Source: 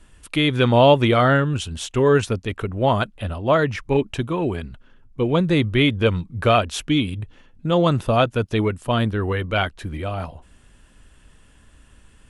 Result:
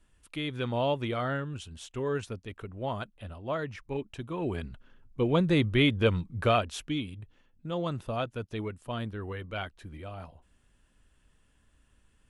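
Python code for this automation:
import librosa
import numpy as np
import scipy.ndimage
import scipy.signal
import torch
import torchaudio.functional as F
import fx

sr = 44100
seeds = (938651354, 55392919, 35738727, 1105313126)

y = fx.gain(x, sr, db=fx.line((4.18, -15.0), (4.59, -6.0), (6.33, -6.0), (7.14, -14.5)))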